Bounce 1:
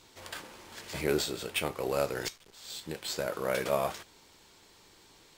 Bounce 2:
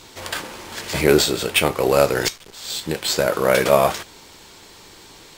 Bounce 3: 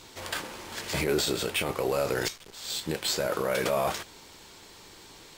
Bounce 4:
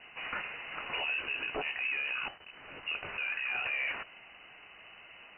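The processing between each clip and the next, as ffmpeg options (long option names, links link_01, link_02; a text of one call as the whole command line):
ffmpeg -i in.wav -af "acontrast=56,volume=8dB" out.wav
ffmpeg -i in.wav -af "alimiter=limit=-12dB:level=0:latency=1:release=19,volume=-5.5dB" out.wav
ffmpeg -i in.wav -af "asoftclip=type=tanh:threshold=-22.5dB,lowpass=frequency=2600:width_type=q:width=0.5098,lowpass=frequency=2600:width_type=q:width=0.6013,lowpass=frequency=2600:width_type=q:width=0.9,lowpass=frequency=2600:width_type=q:width=2.563,afreqshift=-3000,alimiter=level_in=1.5dB:limit=-24dB:level=0:latency=1:release=73,volume=-1.5dB" out.wav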